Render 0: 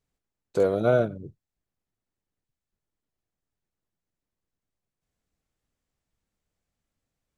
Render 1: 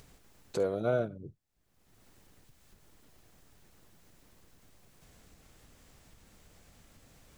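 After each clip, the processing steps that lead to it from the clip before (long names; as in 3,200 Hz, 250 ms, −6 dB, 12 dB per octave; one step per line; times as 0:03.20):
upward compression, threshold −25 dBFS
level −8 dB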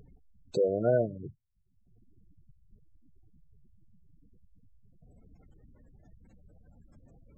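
gate on every frequency bin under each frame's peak −15 dB strong
level +4 dB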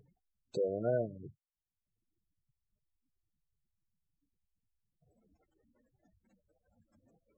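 noise reduction from a noise print of the clip's start 19 dB
level −6.5 dB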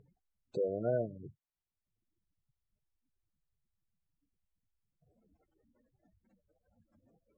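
low-pass filter 1,900 Hz 6 dB per octave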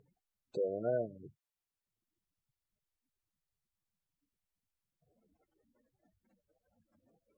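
low-shelf EQ 170 Hz −9 dB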